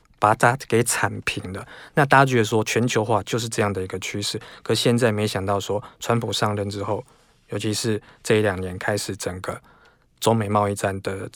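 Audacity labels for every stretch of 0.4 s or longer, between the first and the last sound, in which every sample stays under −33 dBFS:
7.010000	7.520000	silence
9.580000	10.220000	silence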